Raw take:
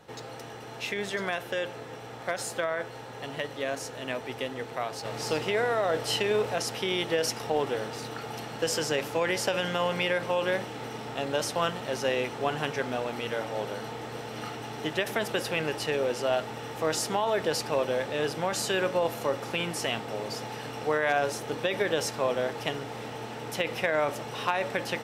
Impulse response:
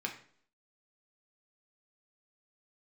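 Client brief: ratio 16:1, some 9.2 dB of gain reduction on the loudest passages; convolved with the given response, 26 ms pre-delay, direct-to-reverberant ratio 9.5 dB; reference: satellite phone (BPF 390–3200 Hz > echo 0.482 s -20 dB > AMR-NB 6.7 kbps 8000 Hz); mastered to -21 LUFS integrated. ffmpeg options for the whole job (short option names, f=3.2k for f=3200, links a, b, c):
-filter_complex "[0:a]acompressor=threshold=-31dB:ratio=16,asplit=2[a][b];[1:a]atrim=start_sample=2205,adelay=26[c];[b][c]afir=irnorm=-1:irlink=0,volume=-12dB[d];[a][d]amix=inputs=2:normalize=0,highpass=390,lowpass=3.2k,aecho=1:1:482:0.1,volume=19dB" -ar 8000 -c:a libopencore_amrnb -b:a 6700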